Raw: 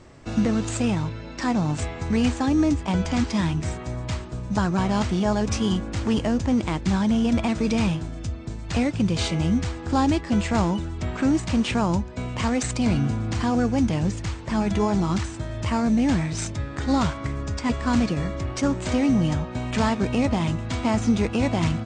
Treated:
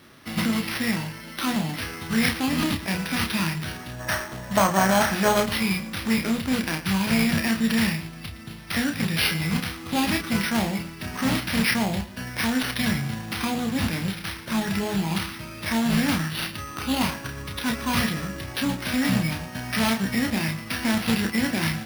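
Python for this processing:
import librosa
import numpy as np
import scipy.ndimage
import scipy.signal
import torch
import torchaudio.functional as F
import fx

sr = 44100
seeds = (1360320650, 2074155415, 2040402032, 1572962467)

p1 = fx.tracing_dist(x, sr, depth_ms=0.12)
p2 = fx.weighting(p1, sr, curve='D')
p3 = fx.spec_box(p2, sr, start_s=4.0, length_s=1.43, low_hz=500.0, high_hz=2600.0, gain_db=10)
p4 = fx.peak_eq(p3, sr, hz=220.0, db=4.5, octaves=0.54)
p5 = fx.quant_float(p4, sr, bits=2)
p6 = fx.formant_shift(p5, sr, semitones=-5)
p7 = fx.doubler(p6, sr, ms=31.0, db=-5.0)
p8 = p7 + fx.echo_single(p7, sr, ms=116, db=-16.0, dry=0)
p9 = np.repeat(p8[::6], 6)[:len(p8)]
y = p9 * 10.0 ** (-4.0 / 20.0)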